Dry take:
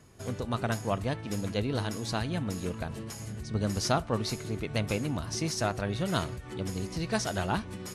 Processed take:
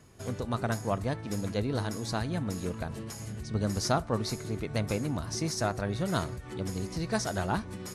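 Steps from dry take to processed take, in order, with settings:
dynamic equaliser 2,900 Hz, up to −7 dB, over −54 dBFS, Q 2.2

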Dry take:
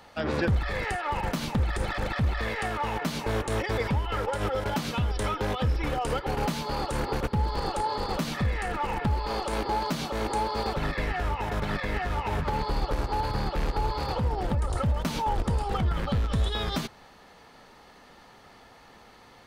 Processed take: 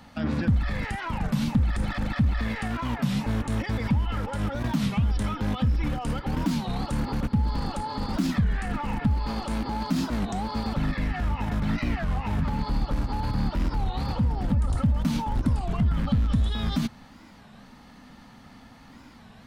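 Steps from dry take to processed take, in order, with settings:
brickwall limiter −24 dBFS, peak gain reduction 6 dB
low shelf with overshoot 310 Hz +7 dB, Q 3
wow of a warped record 33 1/3 rpm, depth 250 cents

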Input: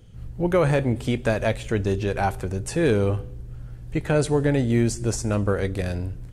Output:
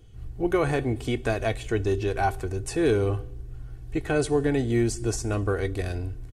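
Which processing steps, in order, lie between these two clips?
comb filter 2.7 ms, depth 60%
level −3.5 dB

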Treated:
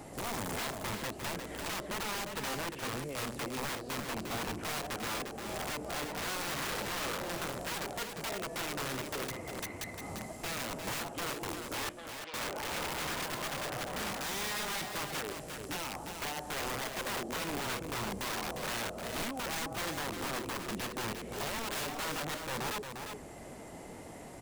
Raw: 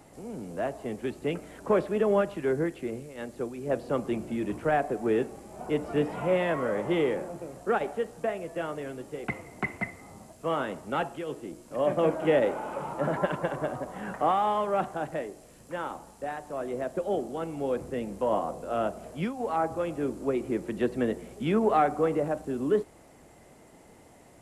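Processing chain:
phase distortion by the signal itself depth 0.35 ms
downward compressor 5 to 1, threshold −39 dBFS, peak gain reduction 17.5 dB
0:11.89–0:12.34: resonant band-pass 3,400 Hz, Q 1.1
wrap-around overflow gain 38 dB
single-tap delay 352 ms −6.5 dB
level +6 dB

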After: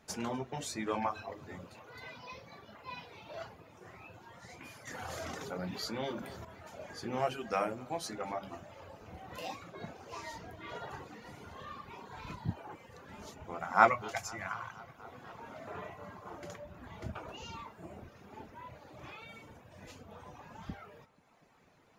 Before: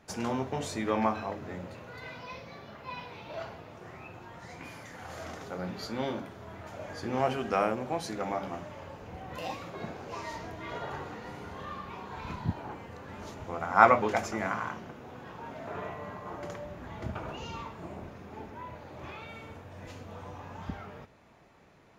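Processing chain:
reverb reduction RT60 1.2 s
0:13.89–0:14.99: octave-band graphic EQ 125/250/500 Hz +4/−10/−7 dB
flanger 0.15 Hz, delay 4.5 ms, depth 7.2 ms, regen −70%
high-shelf EQ 3,900 Hz +6.5 dB
tape delay 245 ms, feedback 88%, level −22.5 dB, low-pass 5,100 Hz
0:04.87–0:06.45: envelope flattener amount 50%

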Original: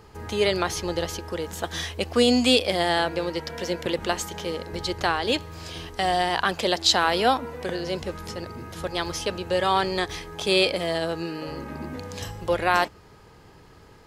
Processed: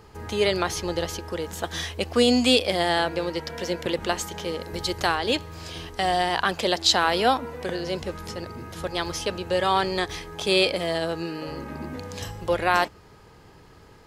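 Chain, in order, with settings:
0:04.60–0:05.14: high-shelf EQ 10,000 Hz → 6,000 Hz +9 dB

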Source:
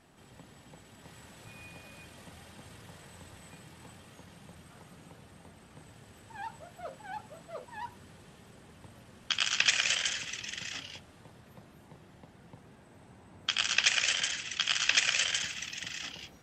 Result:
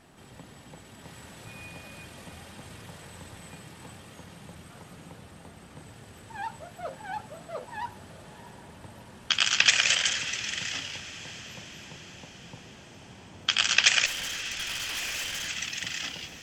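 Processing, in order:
0:14.06–0:15.48: tube saturation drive 37 dB, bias 0.5
feedback delay with all-pass diffusion 671 ms, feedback 57%, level −15 dB
level +5.5 dB

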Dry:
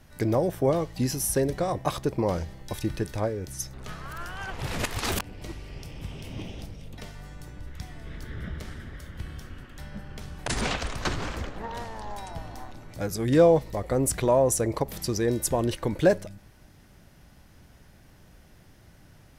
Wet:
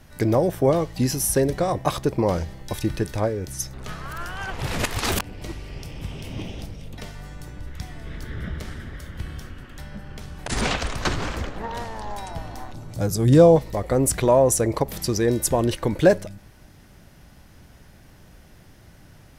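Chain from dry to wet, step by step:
0:09.50–0:10.52: downward compressor 2 to 1, threshold −38 dBFS, peak gain reduction 7.5 dB
0:12.73–0:13.56: octave-band graphic EQ 125/2,000/8,000 Hz +7/−7/+3 dB
level +4.5 dB

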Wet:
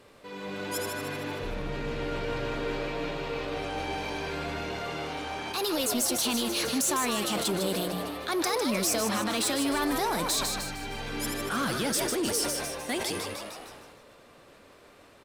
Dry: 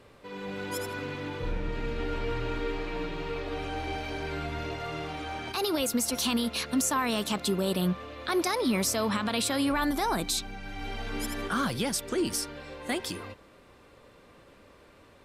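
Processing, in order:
bass and treble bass +1 dB, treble +4 dB
in parallel at −4.5 dB: wave folding −25.5 dBFS
on the sum: low-shelf EQ 130 Hz −6.5 dB
mains-hum notches 60/120/180 Hz
echo with shifted repeats 153 ms, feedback 50%, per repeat +110 Hz, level −7 dB
on a send at −19.5 dB: convolution reverb RT60 1.1 s, pre-delay 7 ms
on the sum: level that may fall only so fast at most 25 dB per second
level −4 dB

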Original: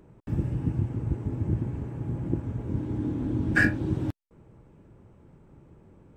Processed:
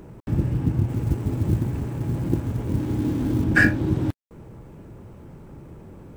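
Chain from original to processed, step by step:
mu-law and A-law mismatch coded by mu
0:00.89–0:03.44: high-shelf EQ 3,500 Hz +8.5 dB
level +4.5 dB

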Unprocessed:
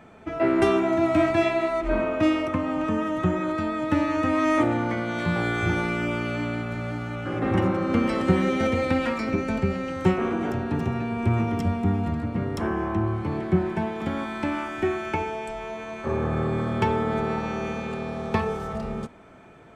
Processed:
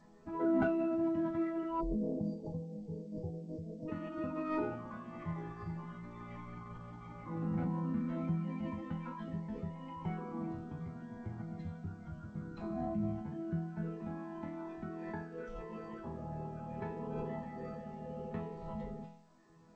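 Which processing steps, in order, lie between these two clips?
hum removal 121.1 Hz, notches 2
reverb reduction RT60 1 s
log-companded quantiser 8 bits
low-shelf EQ 210 Hz +6 dB
notch filter 470 Hz, Q 12
downward compressor 1.5 to 1, threshold −29 dBFS, peak gain reduction 6.5 dB
resonators tuned to a chord E3 major, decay 0.69 s
time-frequency box erased 0:01.81–0:03.88, 1,200–4,600 Hz
formants moved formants −5 semitones
high-frequency loss of the air 370 metres
level +10.5 dB
G.722 64 kbit/s 16,000 Hz

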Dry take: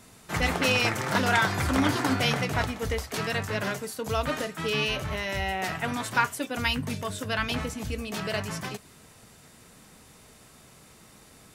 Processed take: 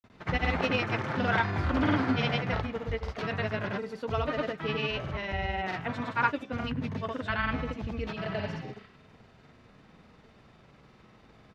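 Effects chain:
healed spectral selection 0:08.36–0:09.04, 1,000–5,000 Hz both
granular cloud, pitch spread up and down by 0 semitones
high-frequency loss of the air 260 metres

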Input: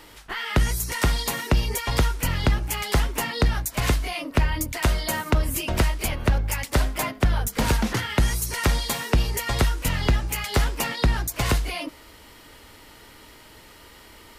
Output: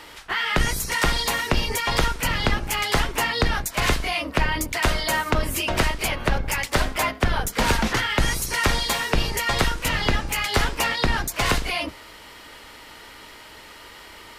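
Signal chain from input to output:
sub-octave generator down 2 octaves, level +1 dB
mid-hump overdrive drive 12 dB, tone 4,600 Hz, clips at −7.5 dBFS

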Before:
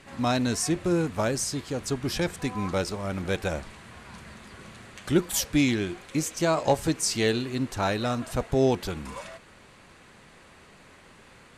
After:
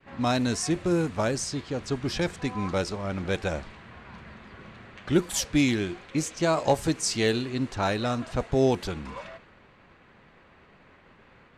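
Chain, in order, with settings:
downward expander −49 dBFS
low-pass that shuts in the quiet parts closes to 2,600 Hz, open at −19.5 dBFS

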